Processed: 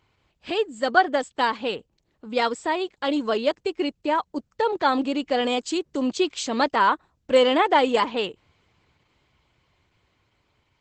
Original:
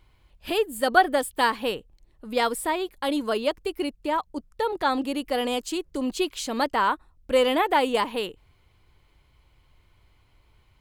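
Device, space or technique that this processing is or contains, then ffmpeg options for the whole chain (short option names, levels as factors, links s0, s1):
video call: -af "highpass=110,dynaudnorm=f=500:g=9:m=1.5" -ar 48000 -c:a libopus -b:a 12k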